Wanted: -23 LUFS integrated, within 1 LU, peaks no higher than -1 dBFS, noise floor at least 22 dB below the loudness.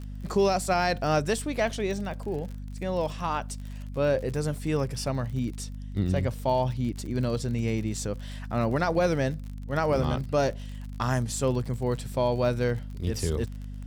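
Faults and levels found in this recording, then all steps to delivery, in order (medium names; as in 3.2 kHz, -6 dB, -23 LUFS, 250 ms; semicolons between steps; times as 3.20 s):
tick rate 49 per s; hum 50 Hz; highest harmonic 250 Hz; hum level -35 dBFS; loudness -28.5 LUFS; peak level -13.0 dBFS; loudness target -23.0 LUFS
-> de-click; de-hum 50 Hz, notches 5; trim +5.5 dB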